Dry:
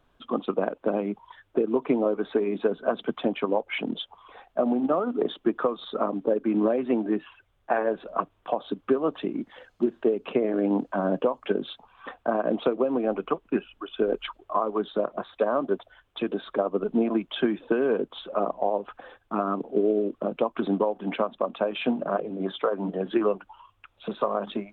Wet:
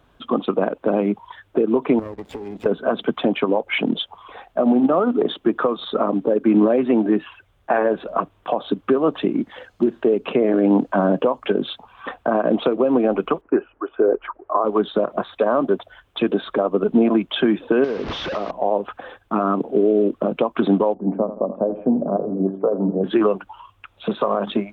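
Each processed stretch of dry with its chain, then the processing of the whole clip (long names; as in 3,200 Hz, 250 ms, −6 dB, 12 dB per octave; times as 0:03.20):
0:01.99–0:02.66: lower of the sound and its delayed copy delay 0.36 ms + downward compressor, threshold −38 dBFS + slack as between gear wheels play −47 dBFS
0:13.41–0:14.65: low-pass filter 1,700 Hz 24 dB per octave + low shelf with overshoot 260 Hz −9 dB, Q 1.5
0:17.84–0:18.51: linear delta modulator 32 kbit/s, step −28.5 dBFS + low-pass filter 3,200 Hz + downward compressor 4 to 1, threshold −31 dBFS
0:20.94–0:23.04: Bessel low-pass filter 550 Hz, order 4 + repeating echo 83 ms, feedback 47%, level −13 dB
whole clip: brickwall limiter −17 dBFS; high-pass filter 42 Hz; low-shelf EQ 170 Hz +3.5 dB; level +8.5 dB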